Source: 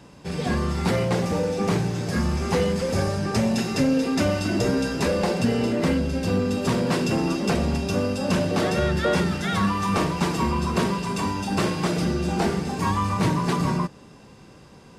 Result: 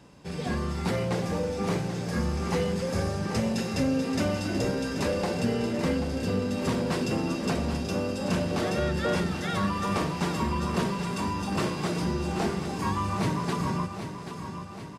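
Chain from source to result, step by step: feedback echo 0.784 s, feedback 57%, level -9.5 dB; gain -5.5 dB

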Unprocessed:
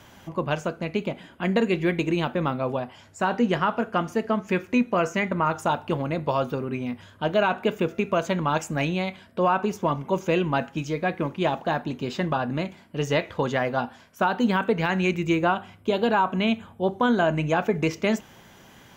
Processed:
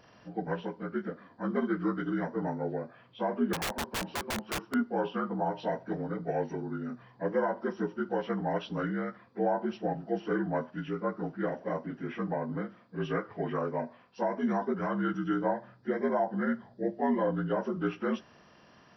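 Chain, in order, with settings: inharmonic rescaling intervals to 76%; 3.53–4.74 wrapped overs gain 21.5 dB; gain -6 dB

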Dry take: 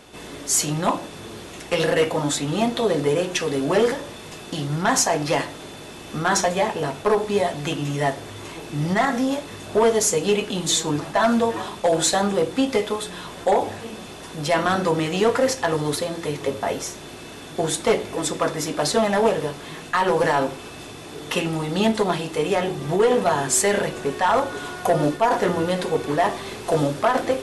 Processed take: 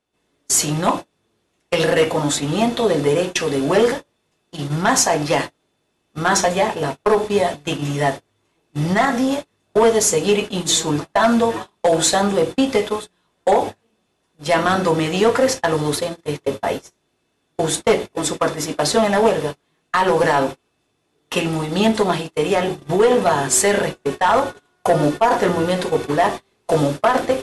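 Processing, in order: gate -26 dBFS, range -34 dB; gain +3.5 dB

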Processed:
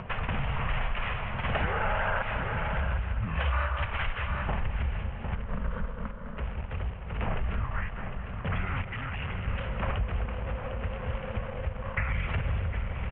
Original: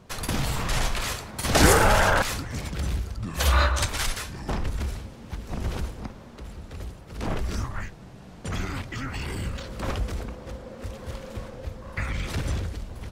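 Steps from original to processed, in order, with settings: 5.35–6.37 fixed phaser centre 510 Hz, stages 8; in parallel at -9 dB: requantised 6-bit, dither none; on the sum: feedback echo 0.206 s, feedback 51%, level -13.5 dB; 8.84–9.48 overloaded stage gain 35 dB; echo 0.754 s -14.5 dB; compressor 5:1, threshold -27 dBFS, peak gain reduction 16.5 dB; steep low-pass 3000 Hz 72 dB/oct; bell 310 Hz -14 dB 0.75 oct; upward compressor, threshold -32 dBFS; gain +2 dB

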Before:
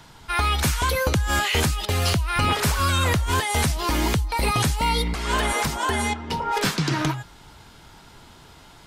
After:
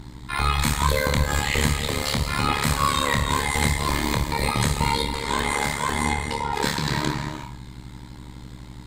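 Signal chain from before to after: ripple EQ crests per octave 1, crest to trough 7 dB; non-linear reverb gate 0.38 s flat, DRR 4 dB; hum 60 Hz, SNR 13 dB; on a send: flutter echo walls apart 4.5 m, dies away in 0.26 s; on the sum: AM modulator 72 Hz, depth 80%

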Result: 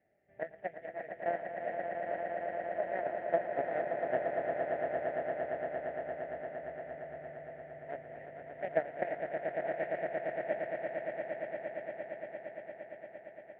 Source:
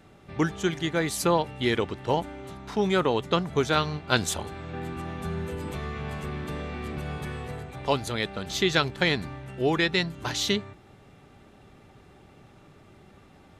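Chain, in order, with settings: CVSD 16 kbps; tilt -4 dB/oct; added harmonics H 3 -8 dB, 8 -42 dB, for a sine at -3.5 dBFS; in parallel at -10 dB: hard clip -13.5 dBFS, distortion -9 dB; on the sum: double band-pass 1100 Hz, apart 1.5 oct; on a send: swelling echo 0.115 s, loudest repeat 8, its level -7 dB

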